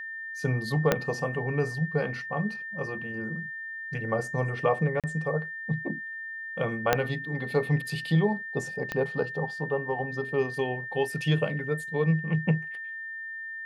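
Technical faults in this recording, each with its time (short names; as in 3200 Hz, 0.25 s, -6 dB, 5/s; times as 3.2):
tone 1800 Hz -35 dBFS
0.92 pop -7 dBFS
5–5.04 gap 37 ms
6.93 pop -6 dBFS
8.92 pop -16 dBFS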